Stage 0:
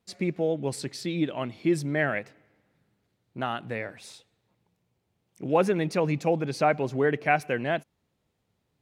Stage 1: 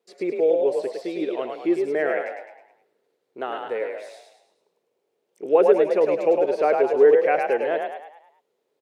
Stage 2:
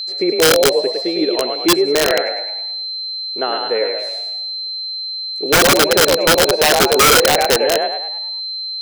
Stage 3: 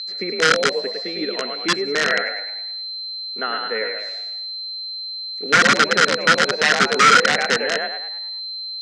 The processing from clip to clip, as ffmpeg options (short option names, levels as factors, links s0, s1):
-filter_complex "[0:a]highpass=f=420:t=q:w=4.8,acrossover=split=3000[s0][s1];[s1]acompressor=threshold=0.00398:ratio=4:attack=1:release=60[s2];[s0][s2]amix=inputs=2:normalize=0,asplit=7[s3][s4][s5][s6][s7][s8][s9];[s4]adelay=105,afreqshift=42,volume=0.631[s10];[s5]adelay=210,afreqshift=84,volume=0.285[s11];[s6]adelay=315,afreqshift=126,volume=0.127[s12];[s7]adelay=420,afreqshift=168,volume=0.0575[s13];[s8]adelay=525,afreqshift=210,volume=0.026[s14];[s9]adelay=630,afreqshift=252,volume=0.0116[s15];[s3][s10][s11][s12][s13][s14][s15]amix=inputs=7:normalize=0,volume=0.75"
-filter_complex "[0:a]asplit=2[s0][s1];[s1]alimiter=limit=0.168:level=0:latency=1:release=35,volume=1[s2];[s0][s2]amix=inputs=2:normalize=0,aeval=exprs='val(0)+0.0562*sin(2*PI*4100*n/s)':c=same,aeval=exprs='(mod(2.66*val(0)+1,2)-1)/2.66':c=same,volume=1.33"
-af "highpass=f=130:w=0.5412,highpass=f=130:w=1.3066,equalizer=f=210:t=q:w=4:g=8,equalizer=f=350:t=q:w=4:g=-8,equalizer=f=600:t=q:w=4:g=-6,equalizer=f=850:t=q:w=4:g=-6,equalizer=f=1400:t=q:w=4:g=8,equalizer=f=1900:t=q:w=4:g=9,lowpass=f=6900:w=0.5412,lowpass=f=6900:w=1.3066,volume=0.562"